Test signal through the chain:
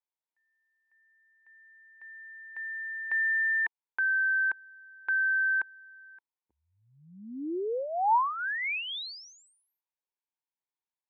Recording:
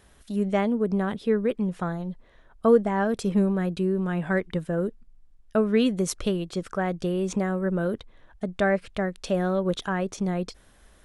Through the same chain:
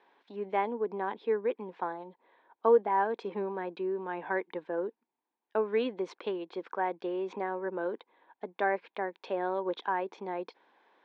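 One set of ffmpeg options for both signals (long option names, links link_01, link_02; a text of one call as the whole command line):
ffmpeg -i in.wav -af "highpass=frequency=360:width=0.5412,highpass=frequency=360:width=1.3066,equalizer=frequency=410:width_type=q:width=4:gain=-3,equalizer=frequency=610:width_type=q:width=4:gain=-10,equalizer=frequency=920:width_type=q:width=4:gain=8,equalizer=frequency=1300:width_type=q:width=4:gain=-10,equalizer=frequency=1900:width_type=q:width=4:gain=-5,equalizer=frequency=2900:width_type=q:width=4:gain=-8,lowpass=frequency=3000:width=0.5412,lowpass=frequency=3000:width=1.3066" out.wav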